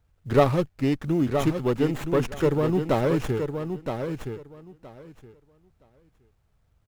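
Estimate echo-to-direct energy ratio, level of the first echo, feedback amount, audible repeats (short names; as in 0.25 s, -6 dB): -7.0 dB, -7.0 dB, 17%, 2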